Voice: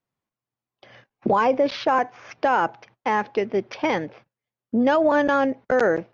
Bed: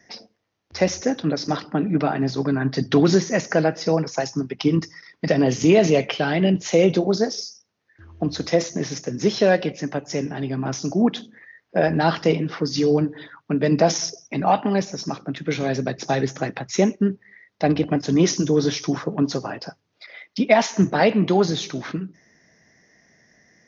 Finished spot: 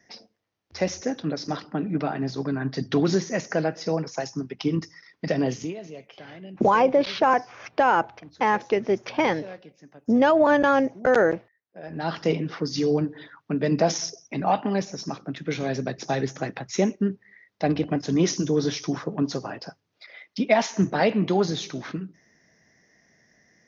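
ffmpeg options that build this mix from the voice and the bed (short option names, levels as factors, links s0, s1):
-filter_complex "[0:a]adelay=5350,volume=1.06[s0];[1:a]volume=4.73,afade=t=out:st=5.46:d=0.28:silence=0.133352,afade=t=in:st=11.82:d=0.49:silence=0.112202[s1];[s0][s1]amix=inputs=2:normalize=0"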